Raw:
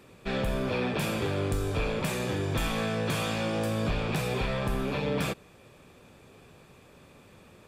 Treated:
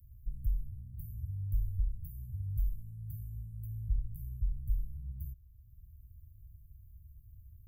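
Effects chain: inverse Chebyshev band-stop 420–4600 Hz, stop band 80 dB; three bands compressed up and down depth 40%; trim +4 dB

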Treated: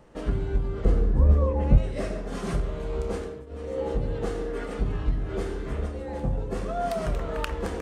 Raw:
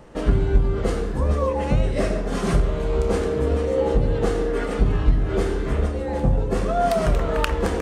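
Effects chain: 0.85–1.78 s: tilt EQ -3 dB/octave; 3.00–3.92 s: dip -18.5 dB, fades 0.46 s equal-power; trim -8 dB

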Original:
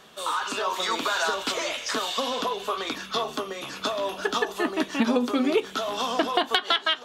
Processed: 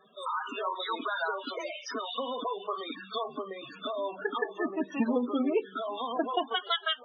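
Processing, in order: loudest bins only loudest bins 16; pre-echo 35 ms -21 dB; trim -4.5 dB

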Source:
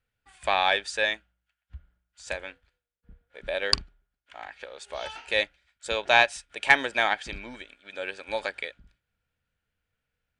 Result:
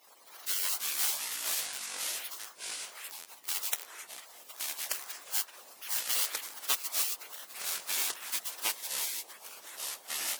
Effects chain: zero-crossing glitches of -15 dBFS; spectral gate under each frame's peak -20 dB weak; high-pass 560 Hz 12 dB/octave; harmonic-percussive split harmonic -10 dB; ever faster or slower copies 212 ms, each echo -4 st, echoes 3

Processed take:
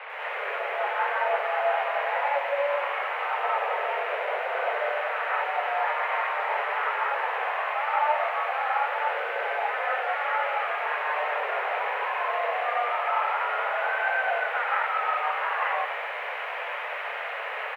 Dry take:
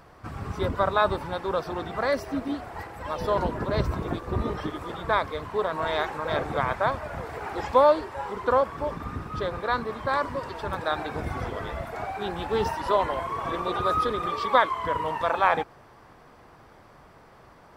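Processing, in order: reverse; compression 4:1, threshold -39 dBFS, peak gain reduction 21 dB; reverse; word length cut 6-bit, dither triangular; on a send: frequency-shifting echo 191 ms, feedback 30%, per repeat -130 Hz, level -18 dB; on the sum: gated-style reverb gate 240 ms rising, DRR -6.5 dB; mistuned SSB +290 Hz 180–2200 Hz; bit-crushed delay 96 ms, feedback 80%, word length 10-bit, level -14.5 dB; trim +5 dB

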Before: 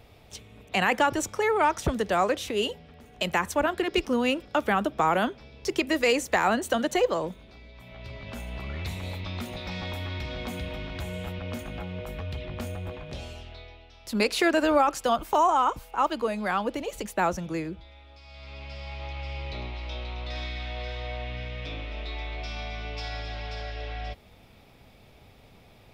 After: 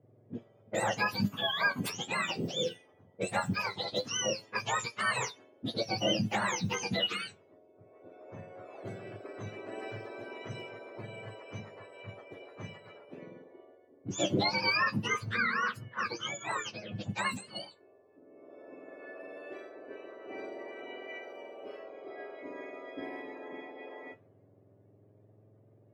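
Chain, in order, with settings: spectrum inverted on a logarithmic axis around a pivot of 1.2 kHz; level-controlled noise filter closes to 520 Hz, open at -26.5 dBFS; flange 0.19 Hz, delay 8 ms, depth 3.9 ms, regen +58%

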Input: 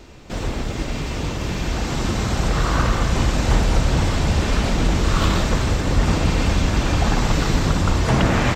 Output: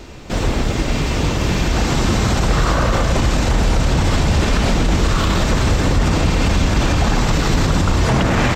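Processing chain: 2.71–3.17 s: peaking EQ 580 Hz +6.5 dB 0.45 oct; peak limiter -14 dBFS, peak gain reduction 9.5 dB; trim +7 dB

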